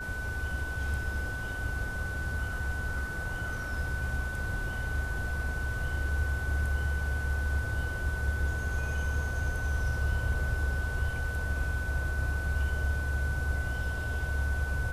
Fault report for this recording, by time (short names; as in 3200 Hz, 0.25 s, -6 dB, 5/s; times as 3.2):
tone 1500 Hz -36 dBFS